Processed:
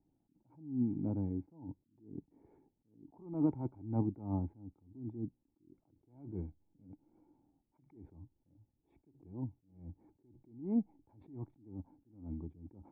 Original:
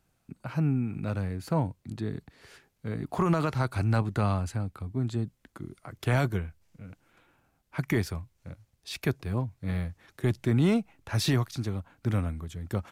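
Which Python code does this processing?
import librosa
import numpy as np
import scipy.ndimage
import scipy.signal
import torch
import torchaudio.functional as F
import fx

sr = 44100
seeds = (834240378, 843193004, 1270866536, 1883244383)

y = fx.formant_cascade(x, sr, vowel='u')
y = fx.attack_slew(y, sr, db_per_s=120.0)
y = y * librosa.db_to_amplitude(7.0)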